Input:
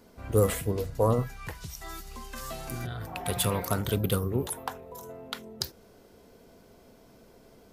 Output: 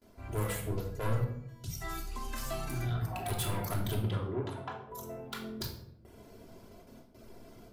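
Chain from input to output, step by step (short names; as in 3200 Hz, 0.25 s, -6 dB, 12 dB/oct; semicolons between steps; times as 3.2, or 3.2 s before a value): reverb removal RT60 0.72 s; gate with hold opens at -48 dBFS; vocal rider within 4 dB 2 s; 1.24–1.64 resonator 330 Hz, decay 0.9 s, mix 100%; soft clip -29.5 dBFS, distortion -6 dB; 4–4.9 BPF 110–3100 Hz; reverb RT60 0.75 s, pre-delay 3 ms, DRR 0 dB; gain -3.5 dB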